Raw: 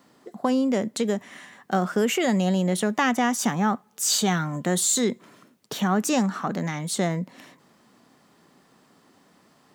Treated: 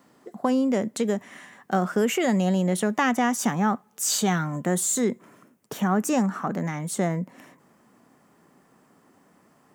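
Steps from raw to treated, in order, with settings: peaking EQ 4 kHz -5 dB 0.99 oct, from 4.61 s -11.5 dB

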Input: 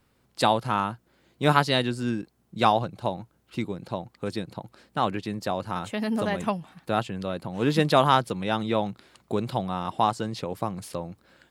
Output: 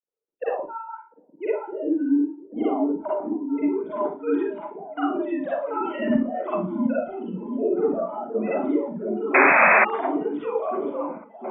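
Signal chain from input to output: formants replaced by sine waves; low-pass that closes with the level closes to 320 Hz, closed at -21.5 dBFS; time-frequency box 7.08–7.76 s, 510–2500 Hz -26 dB; level-controlled noise filter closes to 330 Hz, open at -28 dBFS; Schroeder reverb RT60 0.42 s, DRR -7.5 dB; painted sound noise, 9.34–9.85 s, 490–2600 Hz -13 dBFS; on a send: repeats whose band climbs or falls 699 ms, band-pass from 210 Hz, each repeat 0.7 oct, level -2 dB; on the sum: spectral noise reduction 12 dB; endings held to a fixed fall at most 380 dB/s; trim -2.5 dB

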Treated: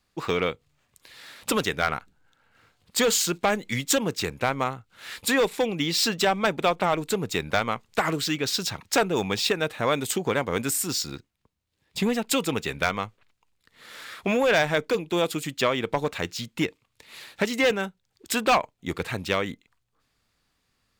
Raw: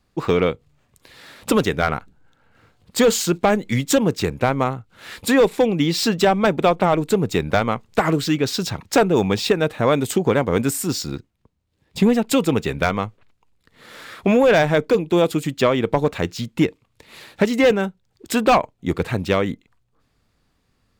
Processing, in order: tilt shelf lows -5 dB, about 900 Hz; trim -5 dB

